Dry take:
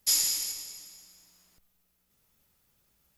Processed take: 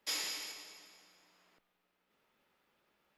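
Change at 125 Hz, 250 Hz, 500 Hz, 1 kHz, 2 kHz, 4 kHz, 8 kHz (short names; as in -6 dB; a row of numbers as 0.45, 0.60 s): -11.0, -0.5, +2.5, +2.5, +1.5, -9.0, -16.0 dB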